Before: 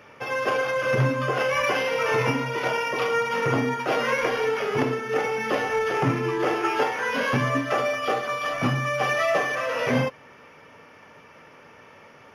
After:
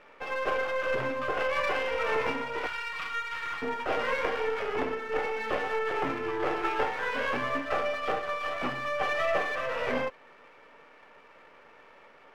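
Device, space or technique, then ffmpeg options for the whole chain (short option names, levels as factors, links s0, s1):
crystal radio: -filter_complex "[0:a]asettb=1/sr,asplit=3[s0][s1][s2];[s0]atrim=end=2.664[s3];[s1]atrim=start=2.66:end=3.62,asetpts=PTS-STARTPTS,afade=t=in:d=0.004:c=qsin,afade=t=out:st=0.956:d=0.004:c=qsin,highpass=f=1200:w=0.5412,highpass=f=1200:w=1.3066[s4];[s2]atrim=start=3.616[s5];[s3][s4]acrossfade=d=0.004:c1=hsin:c2=qsin[s6];[s6][s5]acrossfade=d=0.004:c1=qsin:c2=hsin,highpass=330,lowpass=3000,aeval=exprs='if(lt(val(0),0),0.447*val(0),val(0))':c=same,volume=0.794"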